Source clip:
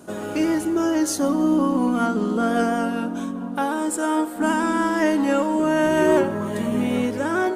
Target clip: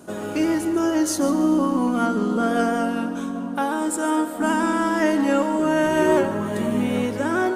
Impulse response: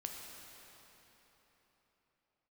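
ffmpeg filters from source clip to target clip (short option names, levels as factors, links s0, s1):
-filter_complex "[0:a]asplit=2[s0][s1];[1:a]atrim=start_sample=2205,adelay=144[s2];[s1][s2]afir=irnorm=-1:irlink=0,volume=0.316[s3];[s0][s3]amix=inputs=2:normalize=0"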